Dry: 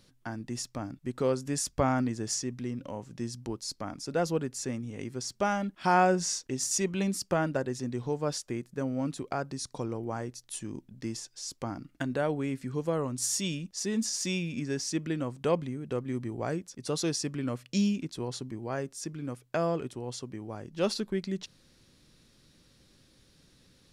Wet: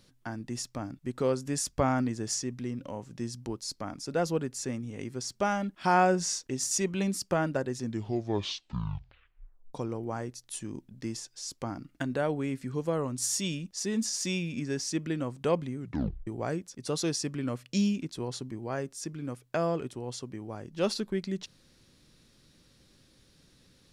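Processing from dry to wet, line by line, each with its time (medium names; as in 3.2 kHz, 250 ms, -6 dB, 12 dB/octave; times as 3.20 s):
7.78 s: tape stop 1.96 s
15.78 s: tape stop 0.49 s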